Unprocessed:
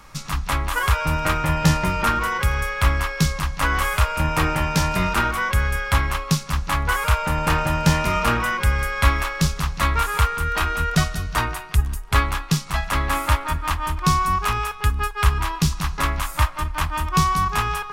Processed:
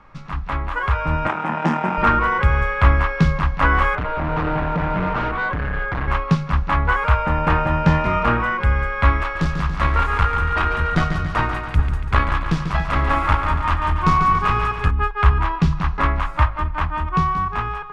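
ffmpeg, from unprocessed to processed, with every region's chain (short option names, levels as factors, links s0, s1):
-filter_complex "[0:a]asettb=1/sr,asplit=3[s0][s1][s2];[s0]atrim=end=1.274[s3];[s1]atrim=start=1.27:end=1.98,asetpts=PTS-STARTPTS,afade=t=in:d=0.004:c=qsin,afade=t=out:st=0.706:d=0.004:c=qsin,aeval=exprs='max(val(0),0)':c=same,highpass=f=170:w=0.5412,highpass=f=170:w=1.3066,equalizer=f=230:t=q:w=4:g=6,equalizer=f=460:t=q:w=4:g=-4,equalizer=f=830:t=q:w=4:g=8,equalizer=f=4200:t=q:w=4:g=-9,equalizer=f=8500:t=q:w=4:g=6,lowpass=f=9300:w=0.5412,lowpass=f=9300:w=1.3066[s4];[s2]atrim=start=1.976[s5];[s3][s4]acrossfade=d=0.004:c1=hsin:c2=qsin[s6];[s6][s5]acrossfade=d=0.004:c1=qsin:c2=hsin,asettb=1/sr,asplit=3[s7][s8][s9];[s7]atrim=end=3.954[s10];[s8]atrim=start=3.95:end=6.08,asetpts=PTS-STARTPTS,afade=t=in:d=0.004:c=qsin,afade=t=out:st=2.126:d=0.004:c=qsin,lowpass=1800,asoftclip=type=hard:threshold=0.0562,aecho=1:1:6.7:0.36,atrim=end_sample=93933[s11];[s9]atrim=start=6.076[s12];[s10][s11]acrossfade=d=0.004:c1=hsin:c2=qsin[s13];[s13][s12]acrossfade=d=0.004:c1=qsin:c2=hsin,asettb=1/sr,asplit=3[s14][s15][s16];[s14]atrim=end=9.214[s17];[s15]atrim=start=9.21:end=14.91,asetpts=PTS-STARTPTS,afade=t=in:d=0.004:c=qsin,afade=t=out:st=5.696:d=0.004:c=qsin,highshelf=f=4600:g=8.5,aeval=exprs='clip(val(0),-1,0.112)':c=same,aecho=1:1:142|284|426|568|710|852|994:0.398|0.231|0.134|0.0777|0.0451|0.0261|0.0152,atrim=end_sample=251370[s18];[s16]atrim=start=14.906[s19];[s17][s18]acrossfade=d=0.004:c1=hsin:c2=qsin[s20];[s20][s19]acrossfade=d=0.004:c1=qsin:c2=hsin,lowpass=1900,bandreject=f=50:t=h:w=6,bandreject=f=100:t=h:w=6,bandreject=f=150:t=h:w=6,dynaudnorm=f=230:g=11:m=3.76,volume=0.891"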